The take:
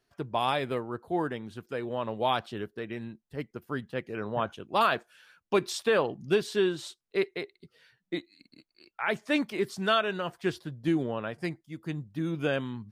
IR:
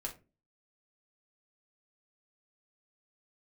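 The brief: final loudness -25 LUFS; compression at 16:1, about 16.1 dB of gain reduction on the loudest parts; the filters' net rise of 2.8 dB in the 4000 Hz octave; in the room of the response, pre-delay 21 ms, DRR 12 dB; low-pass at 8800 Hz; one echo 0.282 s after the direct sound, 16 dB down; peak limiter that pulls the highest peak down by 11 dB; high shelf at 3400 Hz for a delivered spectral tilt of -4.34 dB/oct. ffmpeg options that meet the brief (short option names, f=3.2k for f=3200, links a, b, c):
-filter_complex "[0:a]lowpass=8.8k,highshelf=f=3.4k:g=-6,equalizer=f=4k:t=o:g=7.5,acompressor=threshold=-36dB:ratio=16,alimiter=level_in=9.5dB:limit=-24dB:level=0:latency=1,volume=-9.5dB,aecho=1:1:282:0.158,asplit=2[a][b];[1:a]atrim=start_sample=2205,adelay=21[c];[b][c]afir=irnorm=-1:irlink=0,volume=-11.5dB[d];[a][d]amix=inputs=2:normalize=0,volume=19.5dB"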